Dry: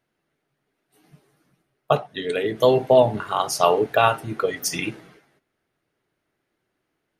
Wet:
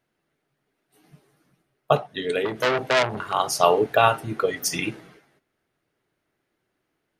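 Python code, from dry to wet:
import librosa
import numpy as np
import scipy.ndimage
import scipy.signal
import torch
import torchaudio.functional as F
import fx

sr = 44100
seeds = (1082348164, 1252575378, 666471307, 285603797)

y = fx.transformer_sat(x, sr, knee_hz=3000.0, at=(2.45, 3.33))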